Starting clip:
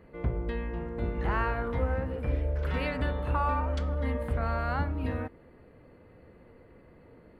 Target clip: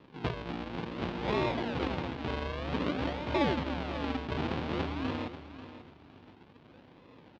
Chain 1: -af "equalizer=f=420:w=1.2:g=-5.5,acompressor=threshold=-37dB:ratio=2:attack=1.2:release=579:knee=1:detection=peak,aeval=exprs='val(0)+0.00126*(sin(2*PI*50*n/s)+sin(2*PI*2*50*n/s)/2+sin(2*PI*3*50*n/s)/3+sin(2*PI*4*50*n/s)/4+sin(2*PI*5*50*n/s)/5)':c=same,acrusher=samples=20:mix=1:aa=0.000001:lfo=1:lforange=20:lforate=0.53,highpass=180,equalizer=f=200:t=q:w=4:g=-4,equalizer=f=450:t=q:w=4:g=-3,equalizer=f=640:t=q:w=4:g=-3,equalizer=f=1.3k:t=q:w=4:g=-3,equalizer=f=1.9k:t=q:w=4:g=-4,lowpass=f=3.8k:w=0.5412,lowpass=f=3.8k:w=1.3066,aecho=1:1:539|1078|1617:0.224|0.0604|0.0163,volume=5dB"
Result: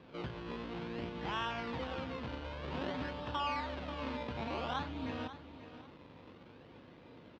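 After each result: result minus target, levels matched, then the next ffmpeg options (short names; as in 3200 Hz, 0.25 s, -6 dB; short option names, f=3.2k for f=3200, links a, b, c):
compressor: peak gain reduction +9.5 dB; decimation with a swept rate: distortion -5 dB
-af "equalizer=f=420:w=1.2:g=-5.5,aeval=exprs='val(0)+0.00126*(sin(2*PI*50*n/s)+sin(2*PI*2*50*n/s)/2+sin(2*PI*3*50*n/s)/3+sin(2*PI*4*50*n/s)/4+sin(2*PI*5*50*n/s)/5)':c=same,acrusher=samples=20:mix=1:aa=0.000001:lfo=1:lforange=20:lforate=0.53,highpass=180,equalizer=f=200:t=q:w=4:g=-4,equalizer=f=450:t=q:w=4:g=-3,equalizer=f=640:t=q:w=4:g=-3,equalizer=f=1.3k:t=q:w=4:g=-3,equalizer=f=1.9k:t=q:w=4:g=-4,lowpass=f=3.8k:w=0.5412,lowpass=f=3.8k:w=1.3066,aecho=1:1:539|1078|1617:0.224|0.0604|0.0163,volume=5dB"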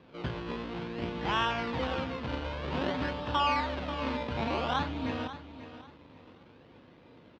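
decimation with a swept rate: distortion -5 dB
-af "equalizer=f=420:w=1.2:g=-5.5,aeval=exprs='val(0)+0.00126*(sin(2*PI*50*n/s)+sin(2*PI*2*50*n/s)/2+sin(2*PI*3*50*n/s)/3+sin(2*PI*4*50*n/s)/4+sin(2*PI*5*50*n/s)/5)':c=same,acrusher=samples=57:mix=1:aa=0.000001:lfo=1:lforange=57:lforate=0.53,highpass=180,equalizer=f=200:t=q:w=4:g=-4,equalizer=f=450:t=q:w=4:g=-3,equalizer=f=640:t=q:w=4:g=-3,equalizer=f=1.3k:t=q:w=4:g=-3,equalizer=f=1.9k:t=q:w=4:g=-4,lowpass=f=3.8k:w=0.5412,lowpass=f=3.8k:w=1.3066,aecho=1:1:539|1078|1617:0.224|0.0604|0.0163,volume=5dB"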